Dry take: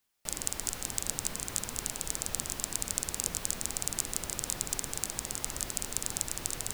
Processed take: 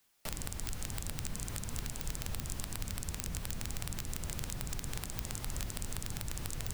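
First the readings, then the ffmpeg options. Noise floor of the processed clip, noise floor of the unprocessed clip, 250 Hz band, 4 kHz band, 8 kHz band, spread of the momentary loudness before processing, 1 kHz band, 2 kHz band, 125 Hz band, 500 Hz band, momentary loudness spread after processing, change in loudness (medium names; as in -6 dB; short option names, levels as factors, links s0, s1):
-44 dBFS, -43 dBFS, -0.5 dB, -6.0 dB, -10.5 dB, 2 LU, -5.0 dB, -4.0 dB, +5.5 dB, -5.0 dB, 1 LU, -6.5 dB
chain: -filter_complex "[0:a]acrossover=split=180[s0][s1];[s1]acompressor=threshold=0.00355:ratio=2.5[s2];[s0][s2]amix=inputs=2:normalize=0,acrossover=split=870|1800[s3][s4][s5];[s5]aeval=exprs='(mod(15*val(0)+1,2)-1)/15':c=same[s6];[s3][s4][s6]amix=inputs=3:normalize=0,volume=2.11"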